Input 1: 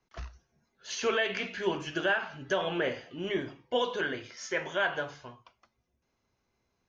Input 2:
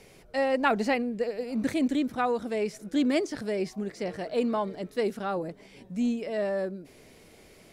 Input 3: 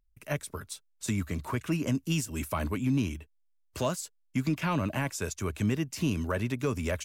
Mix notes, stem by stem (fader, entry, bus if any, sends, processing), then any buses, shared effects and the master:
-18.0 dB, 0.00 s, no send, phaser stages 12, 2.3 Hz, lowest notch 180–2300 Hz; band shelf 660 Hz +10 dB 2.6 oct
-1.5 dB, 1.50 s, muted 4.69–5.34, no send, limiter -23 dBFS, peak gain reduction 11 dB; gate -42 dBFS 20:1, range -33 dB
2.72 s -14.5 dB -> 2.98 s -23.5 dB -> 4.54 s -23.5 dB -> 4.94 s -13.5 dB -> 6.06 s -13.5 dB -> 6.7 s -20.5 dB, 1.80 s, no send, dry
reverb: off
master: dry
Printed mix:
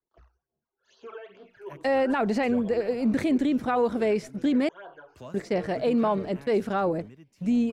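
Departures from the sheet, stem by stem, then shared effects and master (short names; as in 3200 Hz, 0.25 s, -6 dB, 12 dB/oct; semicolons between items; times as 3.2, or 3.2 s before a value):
stem 2 -1.5 dB -> +6.5 dB; stem 3: entry 1.80 s -> 1.40 s; master: extra high shelf 4100 Hz -9.5 dB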